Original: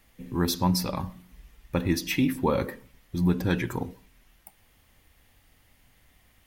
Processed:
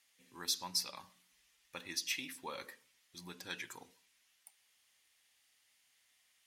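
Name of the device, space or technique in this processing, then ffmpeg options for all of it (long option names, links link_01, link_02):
piezo pickup straight into a mixer: -af "lowpass=6800,aderivative,volume=1dB"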